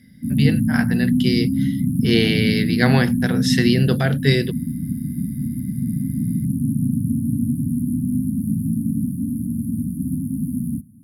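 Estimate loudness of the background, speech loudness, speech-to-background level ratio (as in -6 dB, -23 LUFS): -22.0 LUFS, -21.0 LUFS, 1.0 dB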